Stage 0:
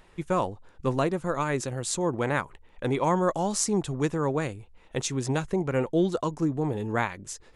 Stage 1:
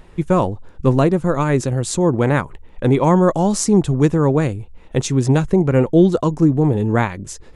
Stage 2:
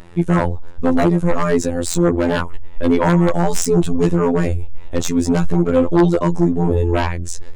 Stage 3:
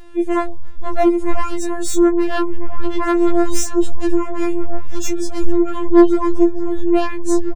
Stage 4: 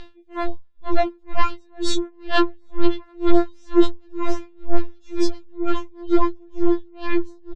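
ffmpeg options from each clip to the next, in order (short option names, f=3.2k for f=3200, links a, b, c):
-af "lowshelf=f=470:g=10,volume=5dB"
-af "afftfilt=real='hypot(re,im)*cos(PI*b)':imag='0':win_size=2048:overlap=0.75,asubboost=boost=5:cutoff=62,aeval=exprs='0.841*(cos(1*acos(clip(val(0)/0.841,-1,1)))-cos(1*PI/2))+0.335*(cos(5*acos(clip(val(0)/0.841,-1,1)))-cos(5*PI/2))':c=same,volume=-2.5dB"
-filter_complex "[0:a]asplit=2[a][b];[b]adelay=1341,volume=-8dB,highshelf=f=4k:g=-30.2[c];[a][c]amix=inputs=2:normalize=0,afftfilt=real='re*4*eq(mod(b,16),0)':imag='im*4*eq(mod(b,16),0)':win_size=2048:overlap=0.75,volume=-4.5dB"
-af "lowpass=f=4k:t=q:w=2.5,aecho=1:1:746|1492|2238|2984:0.188|0.0772|0.0317|0.013,aeval=exprs='val(0)*pow(10,-38*(0.5-0.5*cos(2*PI*2.1*n/s))/20)':c=same,volume=2dB"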